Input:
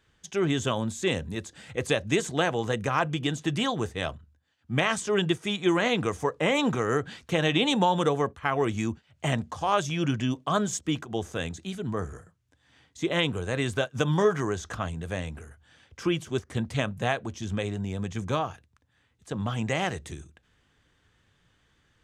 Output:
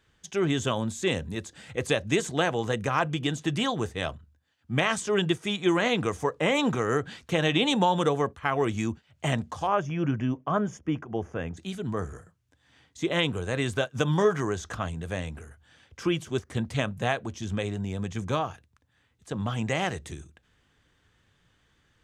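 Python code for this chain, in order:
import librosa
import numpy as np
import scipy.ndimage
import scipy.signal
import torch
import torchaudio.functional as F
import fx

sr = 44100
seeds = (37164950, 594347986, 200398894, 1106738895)

y = fx.moving_average(x, sr, points=11, at=(9.66, 11.56), fade=0.02)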